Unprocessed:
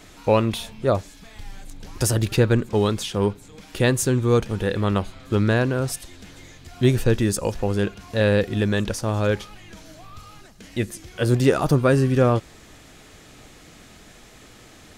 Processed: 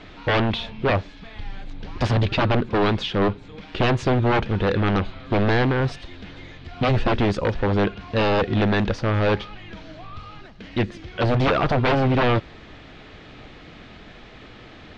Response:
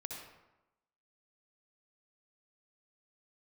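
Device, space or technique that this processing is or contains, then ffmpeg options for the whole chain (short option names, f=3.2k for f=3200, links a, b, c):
synthesiser wavefolder: -af "aeval=exprs='0.126*(abs(mod(val(0)/0.126+3,4)-2)-1)':c=same,lowpass=f=3.9k:w=0.5412,lowpass=f=3.9k:w=1.3066,volume=4.5dB"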